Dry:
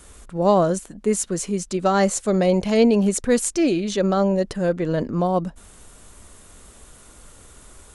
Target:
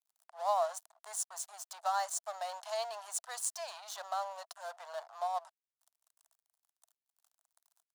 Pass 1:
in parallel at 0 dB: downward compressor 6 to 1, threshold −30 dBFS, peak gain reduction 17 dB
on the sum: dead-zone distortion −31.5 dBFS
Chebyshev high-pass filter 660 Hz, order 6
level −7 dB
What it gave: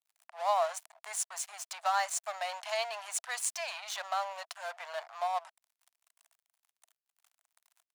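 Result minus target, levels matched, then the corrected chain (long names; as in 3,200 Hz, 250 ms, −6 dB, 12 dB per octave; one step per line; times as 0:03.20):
downward compressor: peak gain reduction −8 dB; 2,000 Hz band +7.0 dB
in parallel at 0 dB: downward compressor 6 to 1, threshold −39.5 dBFS, peak gain reduction 25 dB
on the sum: dead-zone distortion −31.5 dBFS
Chebyshev high-pass filter 660 Hz, order 6
parametric band 2,300 Hz −14 dB 0.94 octaves
level −7 dB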